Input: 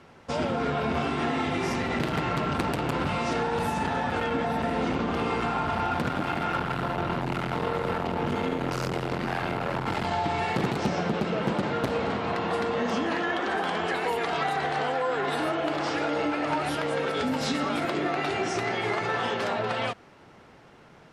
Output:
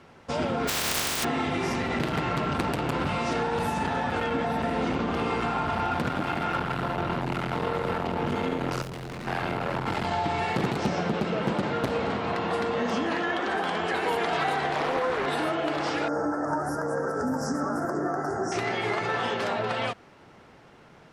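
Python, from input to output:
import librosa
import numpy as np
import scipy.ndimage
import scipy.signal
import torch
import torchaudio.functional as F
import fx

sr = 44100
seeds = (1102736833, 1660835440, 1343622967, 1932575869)

y = fx.spec_flatten(x, sr, power=0.15, at=(0.67, 1.23), fade=0.02)
y = fx.overload_stage(y, sr, gain_db=34.5, at=(8.82, 9.27))
y = fx.echo_throw(y, sr, start_s=13.48, length_s=0.61, ms=450, feedback_pct=70, wet_db=-5.5)
y = fx.doppler_dist(y, sr, depth_ms=0.47, at=(14.73, 15.26))
y = fx.ellip_bandstop(y, sr, low_hz=1600.0, high_hz=5500.0, order=3, stop_db=40, at=(16.08, 18.52))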